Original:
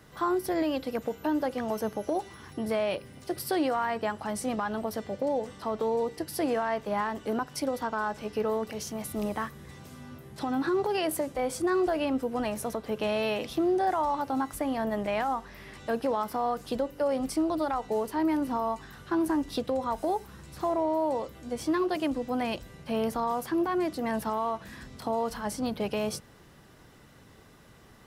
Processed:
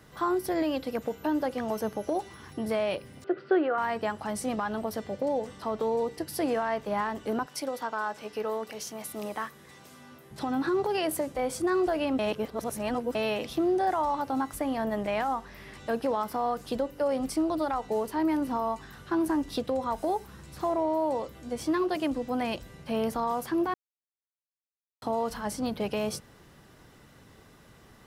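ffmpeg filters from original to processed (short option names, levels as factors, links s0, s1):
-filter_complex "[0:a]asettb=1/sr,asplit=3[s0][s1][s2];[s0]atrim=end=3.244[s3];[s1]atrim=start=3.24:end=3.78,asetpts=PTS-STARTPTS,afade=t=in:d=0.004:c=qsin,afade=t=out:st=0.536:d=0.004:c=qsin,highpass=f=170:w=0.5412,highpass=f=170:w=1.3066,equalizer=f=180:t=q:w=4:g=-9,equalizer=f=260:t=q:w=4:g=-6,equalizer=f=390:t=q:w=4:g=9,equalizer=f=920:t=q:w=4:g=-8,equalizer=f=1400:t=q:w=4:g=9,equalizer=f=2200:t=q:w=4:g=-5,lowpass=f=2600:w=0.5412,lowpass=f=2600:w=1.3066[s4];[s2]atrim=start=3.776[s5];[s3][s4]acrossfade=d=0.004:c1=hsin:c2=qsin[s6];[s6][s5]acrossfade=d=0.004:c1=qsin:c2=hsin,asettb=1/sr,asplit=3[s7][s8][s9];[s7]atrim=end=7.464[s10];[s8]atrim=start=7.46:end=10.31,asetpts=PTS-STARTPTS,afade=t=in:d=0.004:c=qsin,afade=t=out:st=2.846:d=0.004:c=qsin,highpass=f=450:p=1[s11];[s9]atrim=start=10.306[s12];[s10][s11]acrossfade=d=0.004:c1=hsin:c2=qsin[s13];[s13][s12]acrossfade=d=0.004:c1=qsin:c2=hsin,asplit=5[s14][s15][s16][s17][s18];[s14]atrim=end=12.192[s19];[s15]atrim=start=12.188:end=13.152,asetpts=PTS-STARTPTS,areverse[s20];[s16]atrim=start=13.148:end=23.74,asetpts=PTS-STARTPTS,afade=t=out:st=10.588:d=0.004:c=hsin[s21];[s17]atrim=start=23.74:end=25.02,asetpts=PTS-STARTPTS,volume=0[s22];[s18]atrim=start=25.02,asetpts=PTS-STARTPTS,afade=t=in:d=0.004:c=hsin[s23];[s19][s20]acrossfade=d=0.004:c1=hsin:c2=hsin[s24];[s21][s22][s23]concat=n=3:v=0:a=1[s25];[s24][s25]acrossfade=d=0.004:c1=hsin:c2=hsin"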